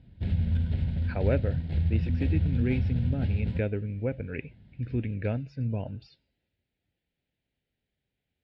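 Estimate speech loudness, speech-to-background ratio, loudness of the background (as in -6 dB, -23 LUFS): -32.5 LUFS, -3.0 dB, -29.5 LUFS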